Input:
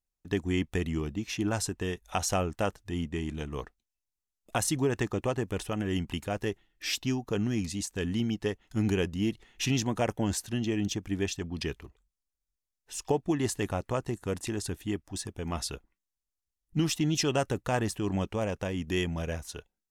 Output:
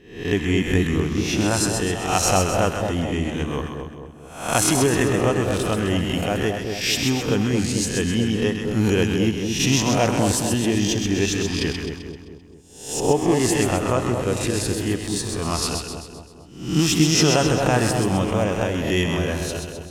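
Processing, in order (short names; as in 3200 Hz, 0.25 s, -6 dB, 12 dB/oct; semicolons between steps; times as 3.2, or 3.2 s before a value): spectral swells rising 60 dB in 0.58 s; on a send: split-band echo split 950 Hz, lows 0.222 s, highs 0.13 s, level -5 dB; on the sum: gain +7 dB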